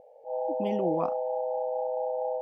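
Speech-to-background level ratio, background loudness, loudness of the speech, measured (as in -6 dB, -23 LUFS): -1.0 dB, -31.0 LUFS, -32.0 LUFS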